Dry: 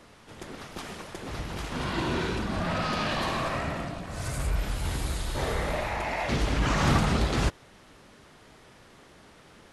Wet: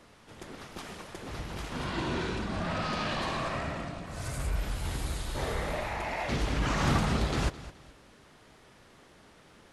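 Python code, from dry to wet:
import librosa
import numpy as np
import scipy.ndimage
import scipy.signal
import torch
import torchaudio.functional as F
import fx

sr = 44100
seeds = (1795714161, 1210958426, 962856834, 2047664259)

y = fx.lowpass(x, sr, hz=10000.0, slope=24, at=(1.87, 4.06))
y = fx.echo_feedback(y, sr, ms=212, feedback_pct=30, wet_db=-16.0)
y = y * 10.0 ** (-3.5 / 20.0)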